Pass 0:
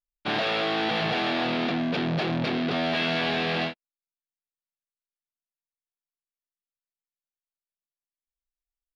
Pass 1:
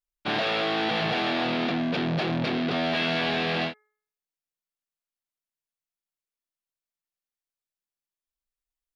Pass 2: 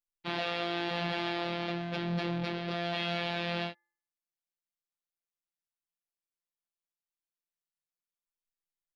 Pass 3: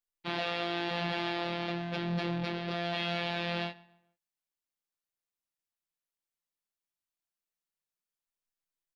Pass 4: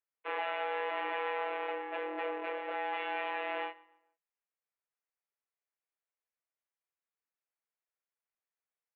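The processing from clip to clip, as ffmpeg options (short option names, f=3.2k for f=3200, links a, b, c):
-af "bandreject=f=424.1:t=h:w=4,bandreject=f=848.2:t=h:w=4,bandreject=f=1.2723k:t=h:w=4,bandreject=f=1.6964k:t=h:w=4,bandreject=f=2.1205k:t=h:w=4"
-af "afftfilt=real='hypot(re,im)*cos(PI*b)':imag='0':win_size=1024:overlap=0.75,volume=-4dB"
-filter_complex "[0:a]asplit=2[a][b];[b]adelay=144,lowpass=f=3.1k:p=1,volume=-21dB,asplit=2[c][d];[d]adelay=144,lowpass=f=3.1k:p=1,volume=0.36,asplit=2[e][f];[f]adelay=144,lowpass=f=3.1k:p=1,volume=0.36[g];[a][c][e][g]amix=inputs=4:normalize=0"
-af "highpass=f=250:t=q:w=0.5412,highpass=f=250:t=q:w=1.307,lowpass=f=2.4k:t=q:w=0.5176,lowpass=f=2.4k:t=q:w=0.7071,lowpass=f=2.4k:t=q:w=1.932,afreqshift=140"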